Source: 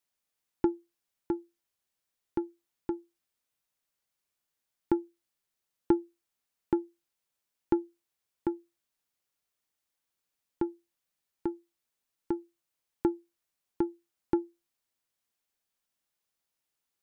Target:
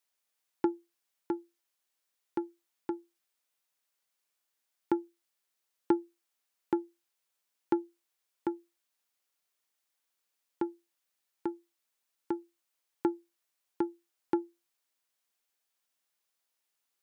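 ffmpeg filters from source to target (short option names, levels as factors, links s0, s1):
-af "highpass=f=470:p=1,volume=1.33"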